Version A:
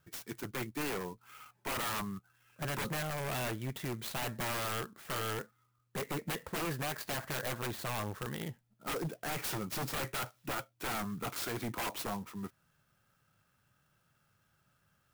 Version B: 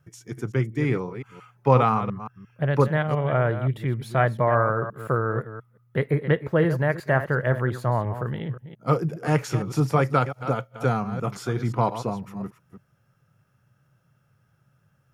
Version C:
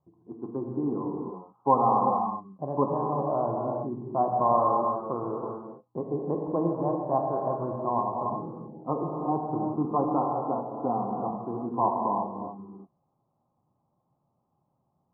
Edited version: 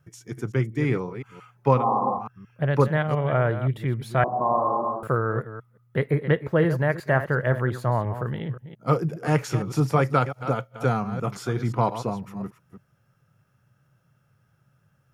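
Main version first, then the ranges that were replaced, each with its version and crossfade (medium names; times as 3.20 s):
B
1.77–2.20 s: from C, crossfade 0.16 s
4.24–5.03 s: from C
not used: A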